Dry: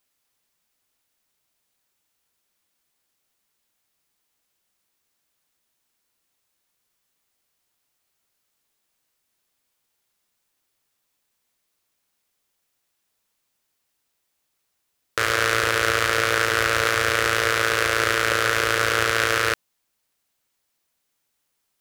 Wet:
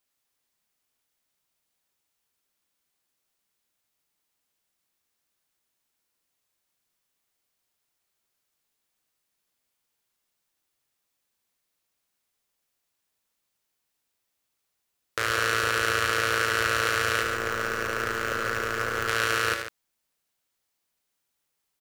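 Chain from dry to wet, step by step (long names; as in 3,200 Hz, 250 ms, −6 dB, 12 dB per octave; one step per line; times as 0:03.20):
0:17.22–0:19.08: running median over 15 samples
loudspeakers that aren't time-aligned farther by 27 metres −7 dB, 50 metres −10 dB
level −5.5 dB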